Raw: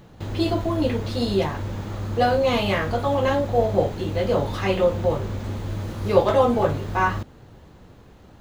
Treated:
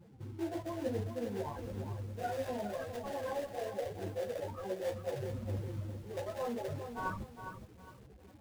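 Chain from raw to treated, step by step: HPF 44 Hz 24 dB/oct; spectral gate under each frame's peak -20 dB strong; elliptic low-pass 1600 Hz; low shelf 330 Hz -10.5 dB; reverse; compressor 8:1, threshold -36 dBFS, peak gain reduction 21.5 dB; reverse; loudest bins only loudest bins 8; in parallel at -7.5 dB: sample-rate reducer 1200 Hz, jitter 20%; on the sum: chorus voices 2, 0.99 Hz, delay 12 ms, depth 4.2 ms; lo-fi delay 0.408 s, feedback 35%, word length 10-bit, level -8 dB; gain +2.5 dB

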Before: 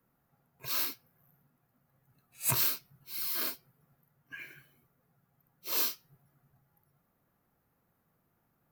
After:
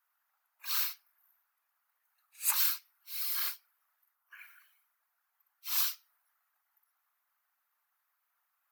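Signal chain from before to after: whisperiser; inverse Chebyshev high-pass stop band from 170 Hz, stop band 80 dB; spectral gain 4.15–4.6, 1500–8900 Hz -7 dB

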